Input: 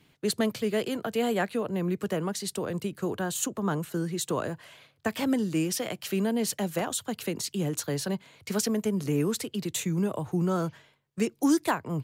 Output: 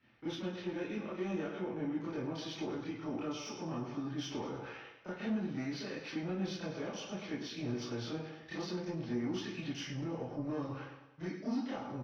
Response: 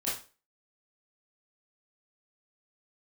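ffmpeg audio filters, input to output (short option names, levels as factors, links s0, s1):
-filter_complex "[0:a]alimiter=limit=0.106:level=0:latency=1:release=369,areverse,acompressor=mode=upward:threshold=0.0141:ratio=2.5,areverse,aecho=1:1:104|208|312|416|520:0.316|0.149|0.0699|0.0328|0.0154,flanger=delay=0.4:depth=9.7:regen=-74:speed=0.31:shape=triangular,aresample=16000,asoftclip=type=tanh:threshold=0.0355,aresample=44100,asetrate=36028,aresample=44100,atempo=1.22405,acrossover=split=380|3000[s0][s1][s2];[s1]acompressor=threshold=0.00708:ratio=6[s3];[s0][s3][s2]amix=inputs=3:normalize=0,atempo=1,asplit=2[s4][s5];[s5]highpass=f=720:p=1,volume=3.16,asoftclip=type=tanh:threshold=0.0596[s6];[s4][s6]amix=inputs=2:normalize=0,lowpass=f=1700:p=1,volume=0.501[s7];[1:a]atrim=start_sample=2205,afade=t=out:st=0.15:d=0.01,atrim=end_sample=7056[s8];[s7][s8]afir=irnorm=-1:irlink=0,volume=0.531"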